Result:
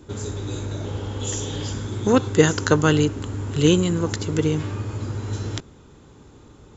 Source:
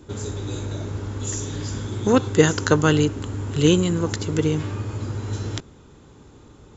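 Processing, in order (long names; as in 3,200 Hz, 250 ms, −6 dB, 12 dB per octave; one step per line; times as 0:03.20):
0:00.84–0:01.73: thirty-one-band graphic EQ 500 Hz +7 dB, 800 Hz +6 dB, 3,150 Hz +11 dB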